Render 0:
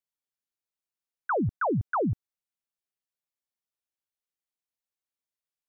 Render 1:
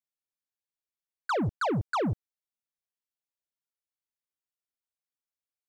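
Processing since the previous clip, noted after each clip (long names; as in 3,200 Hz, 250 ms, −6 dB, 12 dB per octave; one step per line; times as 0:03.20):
leveller curve on the samples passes 2
level −2.5 dB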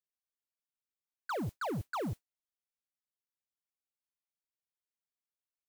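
noise that follows the level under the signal 23 dB
level −8 dB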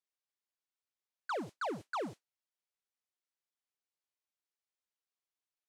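band-pass filter 300–7,600 Hz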